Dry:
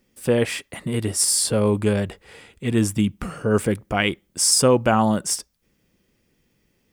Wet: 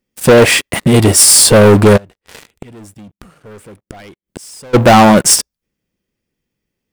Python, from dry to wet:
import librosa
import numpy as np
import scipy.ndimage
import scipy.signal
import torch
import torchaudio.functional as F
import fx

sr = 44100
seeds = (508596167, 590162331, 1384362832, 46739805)

y = fx.dynamic_eq(x, sr, hz=630.0, q=0.86, threshold_db=-30.0, ratio=4.0, max_db=5)
y = fx.leveller(y, sr, passes=5)
y = fx.gate_flip(y, sr, shuts_db=-13.0, range_db=-29, at=(1.96, 4.73), fade=0.02)